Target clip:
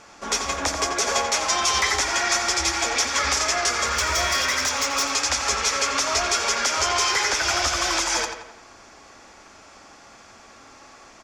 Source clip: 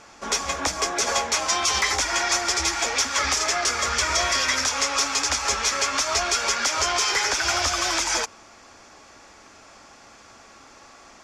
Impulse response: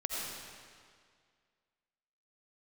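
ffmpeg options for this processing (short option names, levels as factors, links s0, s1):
-filter_complex "[0:a]asettb=1/sr,asplit=3[s0][s1][s2];[s0]atrim=end=3.874[s3];[s1]atrim=start=3.87:end=5.05,asetpts=PTS-STARTPTS,afade=t=in:d=0.004:c=qsin,afade=t=out:st=1.176:d=0.004:c=qsin,asoftclip=type=hard:threshold=0.126[s4];[s2]atrim=start=5.046[s5];[s3][s4]acrossfade=d=0.004:c1=hsin:c2=qsin[s6];[s6][s5]acrossfade=d=0.004:c1=qsin:c2=hsin,asplit=2[s7][s8];[s8]adelay=87,lowpass=f=3800:p=1,volume=0.501,asplit=2[s9][s10];[s10]adelay=87,lowpass=f=3800:p=1,volume=0.51,asplit=2[s11][s12];[s12]adelay=87,lowpass=f=3800:p=1,volume=0.51,asplit=2[s13][s14];[s14]adelay=87,lowpass=f=3800:p=1,volume=0.51,asplit=2[s15][s16];[s16]adelay=87,lowpass=f=3800:p=1,volume=0.51,asplit=2[s17][s18];[s18]adelay=87,lowpass=f=3800:p=1,volume=0.51[s19];[s7][s9][s11][s13][s15][s17][s19]amix=inputs=7:normalize=0"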